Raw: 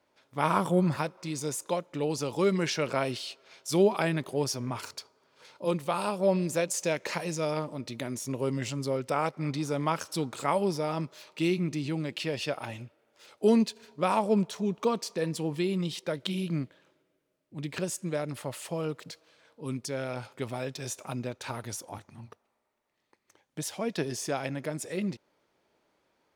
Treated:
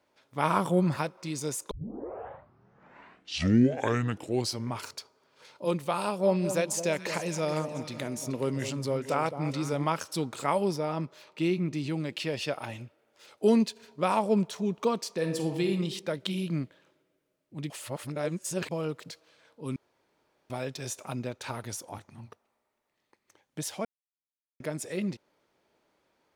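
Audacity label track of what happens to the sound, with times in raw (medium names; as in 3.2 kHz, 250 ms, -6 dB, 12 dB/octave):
1.710000	1.710000	tape start 3.10 s
6.020000	9.870000	echo whose repeats swap between lows and highs 214 ms, split 1 kHz, feedback 63%, level -9.5 dB
10.760000	11.750000	treble shelf 3.6 kHz -7.5 dB
15.170000	15.720000	reverb throw, RT60 0.91 s, DRR 5 dB
17.700000	18.710000	reverse
19.760000	20.500000	room tone
23.850000	24.600000	mute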